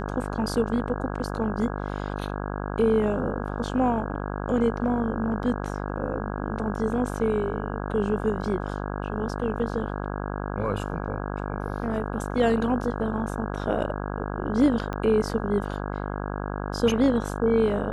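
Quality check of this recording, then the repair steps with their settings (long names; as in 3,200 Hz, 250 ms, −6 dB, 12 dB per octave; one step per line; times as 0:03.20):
mains buzz 50 Hz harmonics 33 −31 dBFS
0:14.93: click −19 dBFS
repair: click removal
hum removal 50 Hz, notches 33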